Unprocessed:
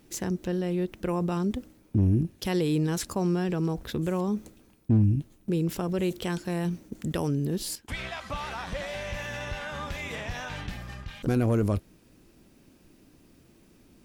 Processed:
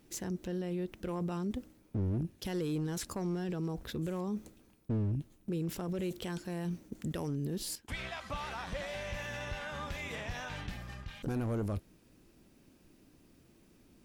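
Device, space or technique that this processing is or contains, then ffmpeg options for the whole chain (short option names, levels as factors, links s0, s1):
clipper into limiter: -af "asoftclip=type=hard:threshold=0.1,alimiter=limit=0.0668:level=0:latency=1:release=15,volume=0.562"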